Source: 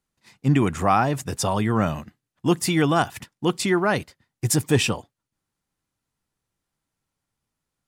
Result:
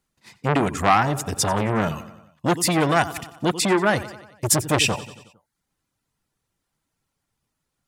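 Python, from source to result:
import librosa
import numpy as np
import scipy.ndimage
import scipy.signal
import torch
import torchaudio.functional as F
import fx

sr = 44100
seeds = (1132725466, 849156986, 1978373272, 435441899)

y = fx.dereverb_blind(x, sr, rt60_s=0.55)
y = fx.echo_feedback(y, sr, ms=91, feedback_pct=56, wet_db=-18.0)
y = fx.transformer_sat(y, sr, knee_hz=1400.0)
y = y * 10.0 ** (5.0 / 20.0)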